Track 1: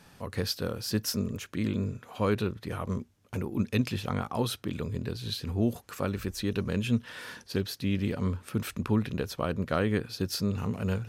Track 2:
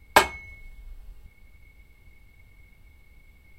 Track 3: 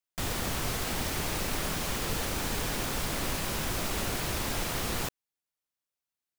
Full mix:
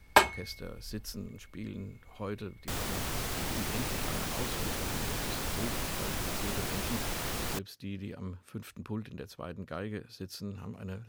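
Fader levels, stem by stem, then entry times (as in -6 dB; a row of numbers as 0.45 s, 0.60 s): -11.0 dB, -4.0 dB, -3.0 dB; 0.00 s, 0.00 s, 2.50 s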